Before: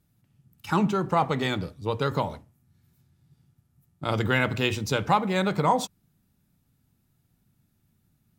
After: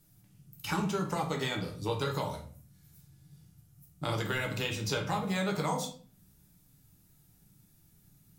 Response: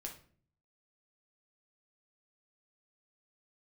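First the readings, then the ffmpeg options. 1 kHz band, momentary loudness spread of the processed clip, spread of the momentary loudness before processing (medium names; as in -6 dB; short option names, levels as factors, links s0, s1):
-9.5 dB, 8 LU, 8 LU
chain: -filter_complex "[0:a]acrossover=split=520|4100[s0][s1][s2];[s0]acompressor=threshold=0.0112:ratio=4[s3];[s1]acompressor=threshold=0.0126:ratio=4[s4];[s2]acompressor=threshold=0.00178:ratio=4[s5];[s3][s4][s5]amix=inputs=3:normalize=0,bass=f=250:g=0,treble=f=4000:g=9[s6];[1:a]atrim=start_sample=2205,afade=t=out:st=0.41:d=0.01,atrim=end_sample=18522[s7];[s6][s7]afir=irnorm=-1:irlink=0,volume=2.11"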